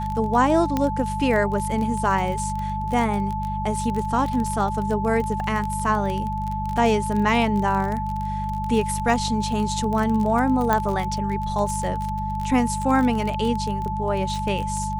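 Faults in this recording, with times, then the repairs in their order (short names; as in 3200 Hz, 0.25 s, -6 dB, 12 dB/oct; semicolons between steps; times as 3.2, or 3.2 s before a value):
crackle 26/s -25 dBFS
hum 50 Hz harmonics 4 -29 dBFS
tone 870 Hz -27 dBFS
0.77 pop -10 dBFS
10.73 pop -7 dBFS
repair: de-click; de-hum 50 Hz, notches 4; notch 870 Hz, Q 30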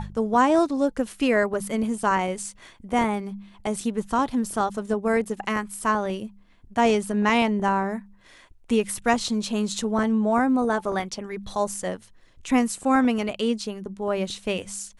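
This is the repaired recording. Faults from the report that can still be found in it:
none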